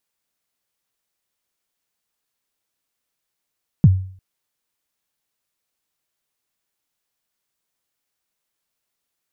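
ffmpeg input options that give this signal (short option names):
-f lavfi -i "aevalsrc='0.631*pow(10,-3*t/0.5)*sin(2*PI*(190*0.038/log(94/190)*(exp(log(94/190)*min(t,0.038)/0.038)-1)+94*max(t-0.038,0)))':d=0.35:s=44100"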